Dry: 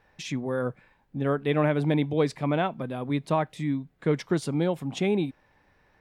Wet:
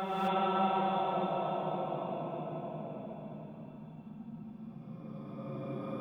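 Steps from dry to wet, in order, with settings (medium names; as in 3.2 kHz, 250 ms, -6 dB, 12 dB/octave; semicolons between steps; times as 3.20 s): Paulstretch 49×, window 0.10 s, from 2.67 s; gated-style reverb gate 290 ms rising, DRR -6.5 dB; trim -9 dB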